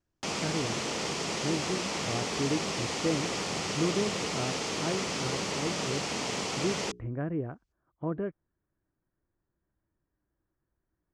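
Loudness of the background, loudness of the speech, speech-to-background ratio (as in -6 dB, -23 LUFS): -32.0 LUFS, -35.5 LUFS, -3.5 dB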